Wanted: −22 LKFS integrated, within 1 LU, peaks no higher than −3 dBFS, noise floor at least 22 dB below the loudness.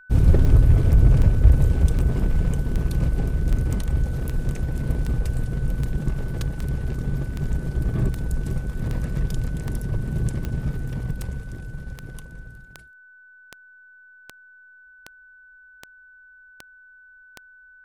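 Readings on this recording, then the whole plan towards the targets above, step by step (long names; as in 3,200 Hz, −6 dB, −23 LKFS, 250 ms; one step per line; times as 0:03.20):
number of clicks 23; interfering tone 1,500 Hz; level of the tone −47 dBFS; integrated loudness −24.0 LKFS; sample peak −2.5 dBFS; target loudness −22.0 LKFS
→ click removal
notch filter 1,500 Hz, Q 30
level +2 dB
brickwall limiter −3 dBFS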